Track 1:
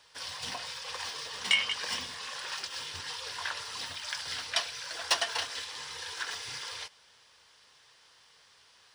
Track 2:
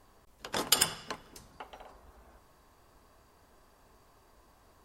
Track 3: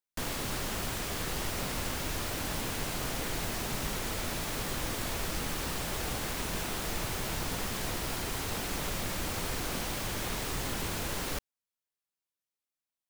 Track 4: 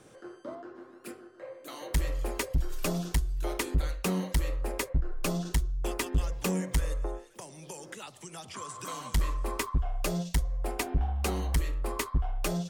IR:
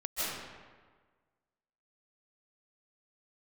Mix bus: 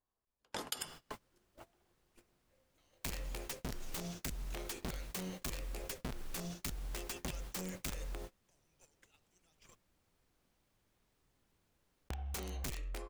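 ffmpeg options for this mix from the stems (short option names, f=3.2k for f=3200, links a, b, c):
-filter_complex "[1:a]volume=-3.5dB[a];[2:a]lowshelf=f=460:g=3.5,adelay=700,volume=-17.5dB[b];[3:a]equalizer=f=100:t=o:w=0.67:g=-5,equalizer=f=250:t=o:w=0.67:g=-4,equalizer=f=1k:t=o:w=0.67:g=-7,equalizer=f=2.5k:t=o:w=0.67:g=7,equalizer=f=6.3k:t=o:w=0.67:g=7,equalizer=f=16k:t=o:w=0.67:g=-5,aeval=exprs='0.224*(cos(1*acos(clip(val(0)/0.224,-1,1)))-cos(1*PI/2))+0.00251*(cos(3*acos(clip(val(0)/0.224,-1,1)))-cos(3*PI/2))+0.00355*(cos(4*acos(clip(val(0)/0.224,-1,1)))-cos(4*PI/2))':c=same,aeval=exprs='(mod(15*val(0)+1,2)-1)/15':c=same,adelay=1100,volume=-6dB,asplit=3[c][d][e];[c]atrim=end=9.75,asetpts=PTS-STARTPTS,afade=t=out:st=9.746:d=0.004:c=hsin[f];[d]atrim=start=9.75:end=12.1,asetpts=PTS-STARTPTS,volume=0[g];[e]atrim=start=12.1,asetpts=PTS-STARTPTS,afade=t=in:d=0.004:c=hsin[h];[f][g][h]concat=n=3:v=0:a=1[i];[a][b][i]amix=inputs=3:normalize=0,agate=range=-27dB:threshold=-41dB:ratio=16:detection=peak,acompressor=threshold=-39dB:ratio=5"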